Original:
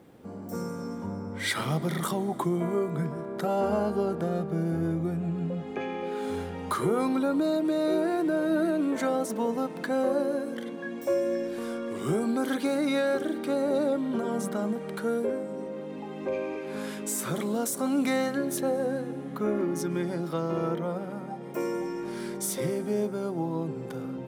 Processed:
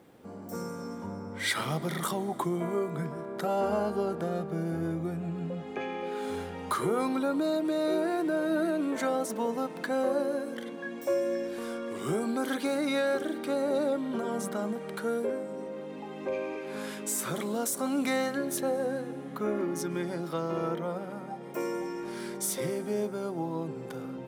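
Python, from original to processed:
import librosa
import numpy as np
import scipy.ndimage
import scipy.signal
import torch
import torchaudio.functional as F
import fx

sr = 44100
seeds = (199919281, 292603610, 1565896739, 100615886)

y = fx.low_shelf(x, sr, hz=360.0, db=-5.5)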